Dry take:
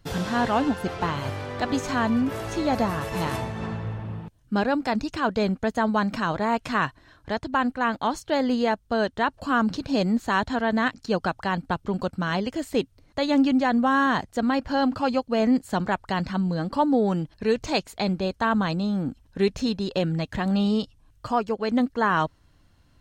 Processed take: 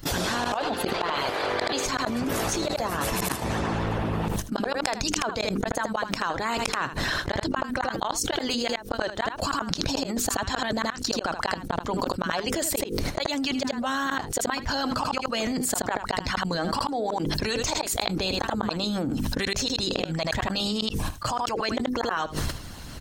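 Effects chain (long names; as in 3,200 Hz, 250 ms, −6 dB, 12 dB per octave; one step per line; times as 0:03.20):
gain on a spectral selection 0:00.57–0:01.85, 310–5,000 Hz +10 dB
mains-hum notches 50/100/150/200/250/300/350/400/450/500 Hz
noise gate −52 dBFS, range −15 dB
harmonic and percussive parts rebalanced harmonic −16 dB
bass and treble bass −1 dB, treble +6 dB
gate with flip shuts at −20 dBFS, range −39 dB
single-tap delay 79 ms −16 dB
envelope flattener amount 100%
level +2 dB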